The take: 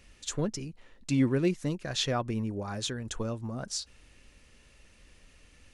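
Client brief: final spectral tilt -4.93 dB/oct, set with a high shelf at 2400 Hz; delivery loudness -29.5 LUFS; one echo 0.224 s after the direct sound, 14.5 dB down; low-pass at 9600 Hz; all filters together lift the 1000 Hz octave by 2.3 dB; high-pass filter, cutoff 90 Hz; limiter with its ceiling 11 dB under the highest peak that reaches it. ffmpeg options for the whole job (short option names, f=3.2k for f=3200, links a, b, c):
-af "highpass=90,lowpass=9.6k,equalizer=f=1k:t=o:g=4,highshelf=f=2.4k:g=-4,alimiter=level_in=2dB:limit=-24dB:level=0:latency=1,volume=-2dB,aecho=1:1:224:0.188,volume=7dB"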